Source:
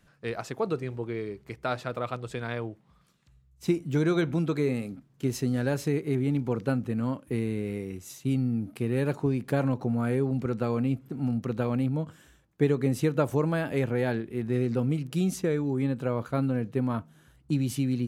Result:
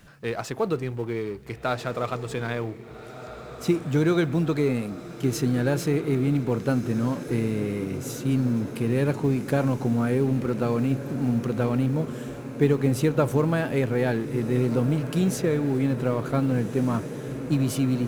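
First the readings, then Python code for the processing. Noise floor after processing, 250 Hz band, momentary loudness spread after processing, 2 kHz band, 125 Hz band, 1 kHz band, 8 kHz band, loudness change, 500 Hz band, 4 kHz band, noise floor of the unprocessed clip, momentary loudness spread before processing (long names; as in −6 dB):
−41 dBFS, +4.0 dB, 9 LU, +4.0 dB, +4.0 dB, +4.0 dB, +5.5 dB, +3.5 dB, +3.5 dB, +4.5 dB, −62 dBFS, 8 LU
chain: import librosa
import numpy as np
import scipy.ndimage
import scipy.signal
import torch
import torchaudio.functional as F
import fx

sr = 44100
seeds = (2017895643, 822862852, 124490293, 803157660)

y = fx.law_mismatch(x, sr, coded='mu')
y = fx.echo_diffused(y, sr, ms=1599, feedback_pct=69, wet_db=-12)
y = y * librosa.db_to_amplitude(2.5)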